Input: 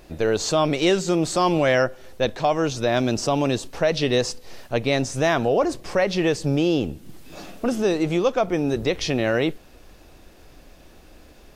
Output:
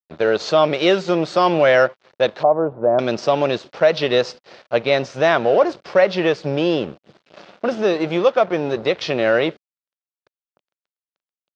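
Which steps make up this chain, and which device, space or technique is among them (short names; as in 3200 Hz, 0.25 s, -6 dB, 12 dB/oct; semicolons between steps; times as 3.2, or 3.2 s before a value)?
blown loudspeaker (crossover distortion -37.5 dBFS; speaker cabinet 180–4800 Hz, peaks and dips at 270 Hz -7 dB, 580 Hz +5 dB, 1400 Hz +4 dB); 2.43–2.99 LPF 1000 Hz 24 dB/oct; gain +4 dB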